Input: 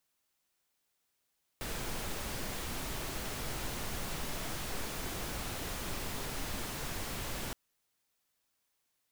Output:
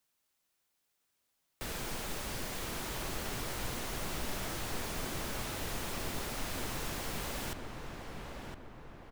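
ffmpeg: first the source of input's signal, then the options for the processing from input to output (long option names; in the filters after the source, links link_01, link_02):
-f lavfi -i "anoisesrc=color=pink:amplitude=0.0646:duration=5.92:sample_rate=44100:seed=1"
-filter_complex "[0:a]acrossover=split=190|6900[link_01][link_02][link_03];[link_01]aeval=exprs='clip(val(0),-1,0.0075)':channel_layout=same[link_04];[link_04][link_02][link_03]amix=inputs=3:normalize=0,asplit=2[link_05][link_06];[link_06]adelay=1012,lowpass=frequency=2000:poles=1,volume=-4dB,asplit=2[link_07][link_08];[link_08]adelay=1012,lowpass=frequency=2000:poles=1,volume=0.51,asplit=2[link_09][link_10];[link_10]adelay=1012,lowpass=frequency=2000:poles=1,volume=0.51,asplit=2[link_11][link_12];[link_12]adelay=1012,lowpass=frequency=2000:poles=1,volume=0.51,asplit=2[link_13][link_14];[link_14]adelay=1012,lowpass=frequency=2000:poles=1,volume=0.51,asplit=2[link_15][link_16];[link_16]adelay=1012,lowpass=frequency=2000:poles=1,volume=0.51,asplit=2[link_17][link_18];[link_18]adelay=1012,lowpass=frequency=2000:poles=1,volume=0.51[link_19];[link_05][link_07][link_09][link_11][link_13][link_15][link_17][link_19]amix=inputs=8:normalize=0"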